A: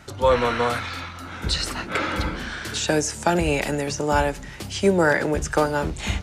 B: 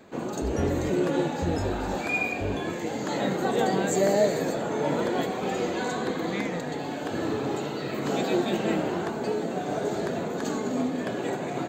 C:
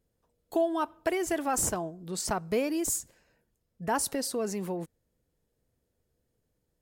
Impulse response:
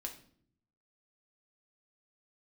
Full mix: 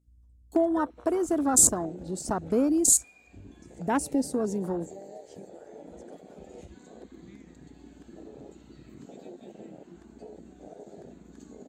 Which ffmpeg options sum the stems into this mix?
-filter_complex "[0:a]acompressor=threshold=-28dB:ratio=16,agate=range=-33dB:threshold=-25dB:ratio=3:detection=peak,adelay=550,volume=-5dB,asplit=3[a][b][c];[a]atrim=end=2.65,asetpts=PTS-STARTPTS,afade=t=out:st=2.646:d=0.004:c=hsin[d];[b]atrim=start=2.65:end=3.62,asetpts=PTS-STARTPTS,volume=0[e];[c]atrim=start=3.62,asetpts=PTS-STARTPTS,afade=t=in:d=0.004:c=hsin[f];[d][e][f]concat=n=3:v=0:a=1[g];[1:a]equalizer=f=2k:t=o:w=1.8:g=3.5,adelay=950,volume=-12.5dB[h];[2:a]equalizer=f=270:w=2.1:g=9.5,volume=0dB,asplit=2[i][j];[j]apad=whole_len=557135[k];[h][k]sidechaincompress=threshold=-35dB:ratio=3:attack=16:release=134[l];[g][l]amix=inputs=2:normalize=0,aeval=exprs='val(0)+0.00224*(sin(2*PI*60*n/s)+sin(2*PI*2*60*n/s)/2+sin(2*PI*3*60*n/s)/3+sin(2*PI*4*60*n/s)/4+sin(2*PI*5*60*n/s)/5)':c=same,acompressor=threshold=-40dB:ratio=6,volume=0dB[m];[i][m]amix=inputs=2:normalize=0,afwtdn=0.02,asoftclip=type=hard:threshold=-14.5dB,equalizer=f=7.9k:w=0.74:g=13.5"

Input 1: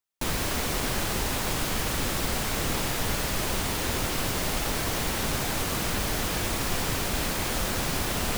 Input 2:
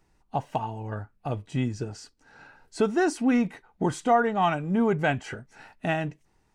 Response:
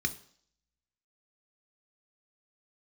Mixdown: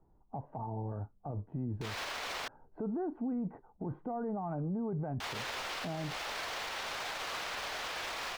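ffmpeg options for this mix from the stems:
-filter_complex "[0:a]acrossover=split=530 5400:gain=0.0708 1 0.126[a][b][c];[a][b][c]amix=inputs=3:normalize=0,alimiter=level_in=3dB:limit=-24dB:level=0:latency=1,volume=-3dB,adelay=1600,volume=0.5dB,asplit=3[d][e][f];[d]atrim=end=2.48,asetpts=PTS-STARTPTS,afade=t=out:st=2.476:d=0.004:c=hsin[g];[e]atrim=start=2.48:end=5.2,asetpts=PTS-STARTPTS,volume=0[h];[f]atrim=start=5.2,asetpts=PTS-STARTPTS,afade=t=in:d=0.004:c=hsin[i];[g][h][i]concat=n=3:v=0:a=1[j];[1:a]lowpass=f=1k:w=0.5412,lowpass=f=1k:w=1.3066,volume=-0.5dB[k];[j][k]amix=inputs=2:normalize=0,acrossover=split=230[l][m];[m]acompressor=threshold=-28dB:ratio=6[n];[l][n]amix=inputs=2:normalize=0,alimiter=level_in=6dB:limit=-24dB:level=0:latency=1:release=50,volume=-6dB"

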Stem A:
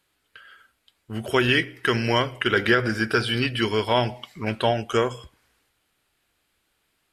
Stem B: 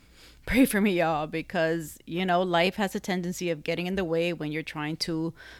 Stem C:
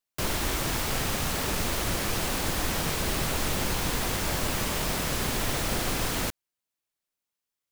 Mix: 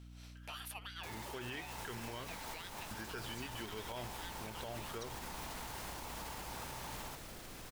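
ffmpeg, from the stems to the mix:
-filter_complex "[0:a]aeval=exprs='val(0)+0.0224*(sin(2*PI*60*n/s)+sin(2*PI*2*60*n/s)/2+sin(2*PI*3*60*n/s)/3+sin(2*PI*4*60*n/s)/4+sin(2*PI*5*60*n/s)/5)':c=same,volume=-19dB,asplit=3[a][b][c];[a]atrim=end=2.31,asetpts=PTS-STARTPTS,afade=t=out:st=2.306:d=0.004:c=hsin[d];[b]atrim=start=2.31:end=2.91,asetpts=PTS-STARTPTS,volume=0[e];[c]atrim=start=2.91,asetpts=PTS-STARTPTS,afade=t=in:d=0.004:c=hsin[f];[d][e][f]concat=n=3:v=0:a=1[g];[1:a]highpass=f=1.2k:w=0.5412,highpass=f=1.2k:w=1.3066,volume=-4.5dB[h];[2:a]alimiter=limit=-22.5dB:level=0:latency=1:release=69,adelay=850,volume=-5.5dB,asplit=2[i][j];[j]volume=-12dB[k];[h][i]amix=inputs=2:normalize=0,aeval=exprs='val(0)*sin(2*PI*890*n/s)':c=same,acompressor=threshold=-45dB:ratio=3,volume=0dB[l];[k]aecho=0:1:749:1[m];[g][l][m]amix=inputs=3:normalize=0,alimiter=level_in=9.5dB:limit=-24dB:level=0:latency=1:release=127,volume=-9.5dB"

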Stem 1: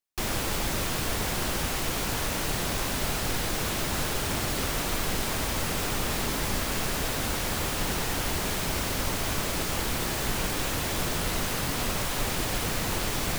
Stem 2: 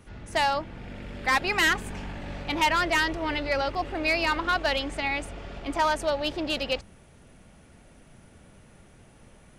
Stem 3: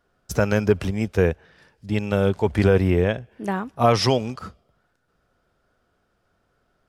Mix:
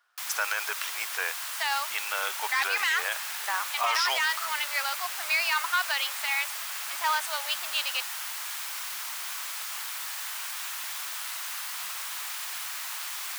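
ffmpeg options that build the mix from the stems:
-filter_complex "[0:a]highshelf=f=9.8k:g=5,volume=-5dB[a];[1:a]adelay=1250,volume=1.5dB[b];[2:a]volume=3dB[c];[a][b][c]amix=inputs=3:normalize=0,highpass=f=1k:w=0.5412,highpass=f=1k:w=1.3066,alimiter=limit=-16.5dB:level=0:latency=1:release=10"

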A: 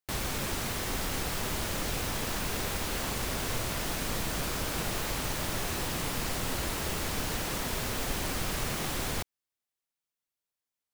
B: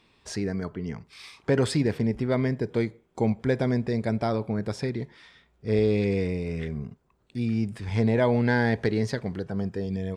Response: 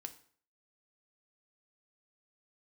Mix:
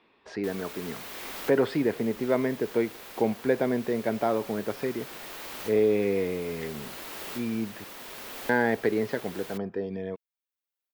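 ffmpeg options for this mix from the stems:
-filter_complex "[0:a]aemphasis=mode=production:type=50fm,adelay=350,volume=2.5dB[a];[1:a]lowpass=f=2.2k:p=1,volume=2.5dB,asplit=3[b][c][d];[b]atrim=end=7.84,asetpts=PTS-STARTPTS,afade=t=out:st=7.836:d=0.004:c=hsin[e];[c]atrim=start=7.84:end=8.49,asetpts=PTS-STARTPTS,volume=0[f];[d]atrim=start=8.49,asetpts=PTS-STARTPTS,afade=t=in:d=0.004:c=hsin[g];[e][f][g]concat=n=3:v=0:a=1,asplit=2[h][i];[i]apad=whole_len=497505[j];[a][j]sidechaincompress=threshold=-38dB:ratio=3:attack=16:release=1410[k];[k][h]amix=inputs=2:normalize=0,acrossover=split=240 4200:gain=0.126 1 0.2[l][m][n];[l][m][n]amix=inputs=3:normalize=0"

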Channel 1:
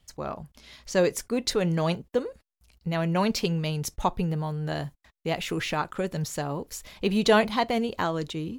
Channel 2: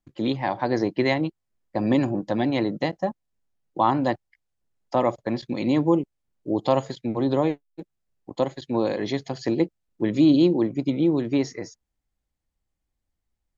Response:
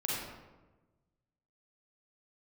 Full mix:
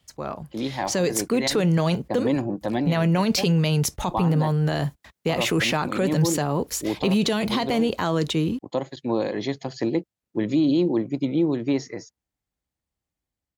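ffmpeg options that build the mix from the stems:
-filter_complex "[0:a]acrossover=split=270|3000[a][b][c];[b]acompressor=threshold=-26dB:ratio=6[d];[a][d][c]amix=inputs=3:normalize=0,volume=1.5dB,asplit=2[e][f];[1:a]adelay=350,volume=-9.5dB[g];[f]apad=whole_len=614300[h];[g][h]sidechaincompress=threshold=-30dB:ratio=8:attack=29:release=177[i];[e][i]amix=inputs=2:normalize=0,dynaudnorm=f=170:g=7:m=9dB,highpass=67,alimiter=limit=-13dB:level=0:latency=1:release=22"

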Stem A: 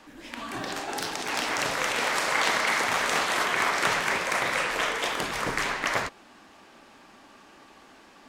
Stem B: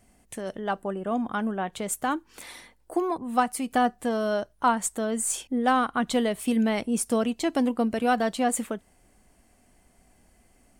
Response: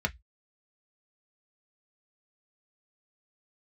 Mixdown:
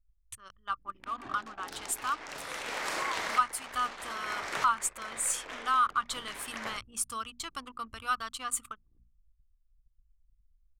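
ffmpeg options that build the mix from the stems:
-filter_complex "[0:a]aeval=exprs='val(0)+0.00708*(sin(2*PI*60*n/s)+sin(2*PI*2*60*n/s)/2+sin(2*PI*3*60*n/s)/3+sin(2*PI*4*60*n/s)/4+sin(2*PI*5*60*n/s)/5)':c=same,adelay=700,volume=-3.5dB[a];[1:a]firequalizer=gain_entry='entry(100,0);entry(150,-26);entry(690,-26);entry(1200,5);entry(1700,-11);entry(3000,-3)':delay=0.05:min_phase=1,volume=0.5dB,asplit=2[b][c];[c]apad=whole_len=396425[d];[a][d]sidechaincompress=threshold=-41dB:ratio=8:attack=43:release=1160[e];[e][b]amix=inputs=2:normalize=0,anlmdn=0.0398,bandreject=f=60:t=h:w=6,bandreject=f=120:t=h:w=6,bandreject=f=180:t=h:w=6,bandreject=f=240:t=h:w=6"

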